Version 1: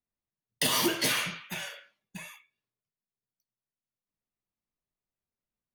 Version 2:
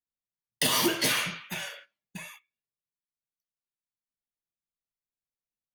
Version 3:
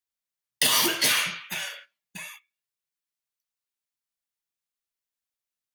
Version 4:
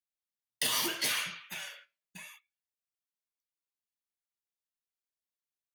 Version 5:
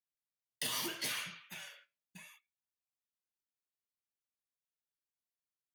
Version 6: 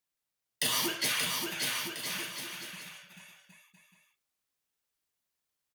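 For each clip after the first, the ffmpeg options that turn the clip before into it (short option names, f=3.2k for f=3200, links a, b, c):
-af "agate=range=-12dB:threshold=-51dB:ratio=16:detection=peak,volume=1.5dB"
-af "tiltshelf=f=730:g=-5"
-af "flanger=delay=0.6:depth=8.2:regen=78:speed=0.79:shape=sinusoidal,volume=-4.5dB"
-af "equalizer=f=140:t=o:w=2.1:g=5,volume=-7dB"
-af "aecho=1:1:580|1015|1341|1586|1769:0.631|0.398|0.251|0.158|0.1,volume=7.5dB"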